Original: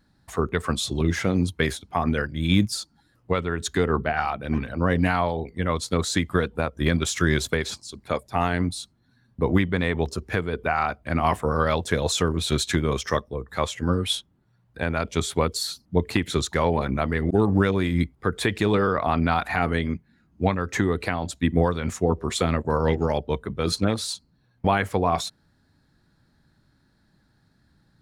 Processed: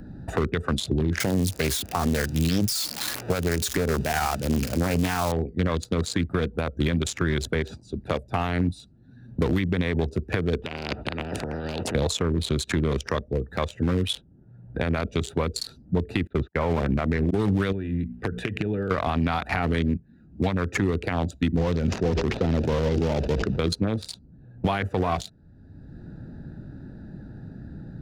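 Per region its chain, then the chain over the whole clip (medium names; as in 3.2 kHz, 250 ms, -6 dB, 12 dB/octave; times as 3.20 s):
1.20–5.32 s: zero-crossing glitches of -17 dBFS + peaking EQ 5.1 kHz +5 dB 1.1 oct + loudspeaker Doppler distortion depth 0.54 ms
10.62–11.95 s: compressor with a negative ratio -31 dBFS + band-pass 170–2700 Hz + spectrum-flattening compressor 10:1
16.27–17.22 s: gate -30 dBFS, range -35 dB + low-pass 2.4 kHz 24 dB/octave
17.72–18.91 s: high-order bell 2.2 kHz +8.5 dB 1.2 oct + hum notches 60/120/180/240 Hz + compression, threshold -30 dBFS
21.57–23.59 s: one-bit delta coder 32 kbps, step -38.5 dBFS + decay stretcher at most 70 dB/s
whole clip: local Wiener filter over 41 samples; peak limiter -18 dBFS; three bands compressed up and down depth 70%; trim +4.5 dB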